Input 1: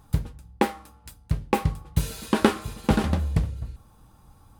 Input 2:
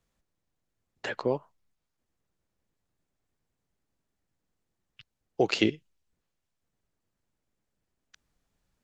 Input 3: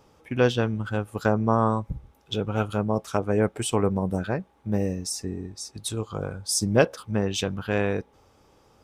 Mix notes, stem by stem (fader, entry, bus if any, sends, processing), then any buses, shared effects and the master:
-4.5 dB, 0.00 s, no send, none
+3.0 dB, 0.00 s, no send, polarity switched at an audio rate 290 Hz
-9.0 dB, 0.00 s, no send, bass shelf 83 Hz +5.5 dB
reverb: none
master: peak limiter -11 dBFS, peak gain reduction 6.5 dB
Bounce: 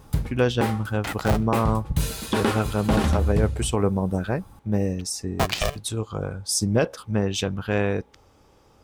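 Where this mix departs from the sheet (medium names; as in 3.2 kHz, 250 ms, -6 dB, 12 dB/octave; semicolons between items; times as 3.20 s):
stem 1 -4.5 dB -> +5.0 dB; stem 3 -9.0 dB -> +1.0 dB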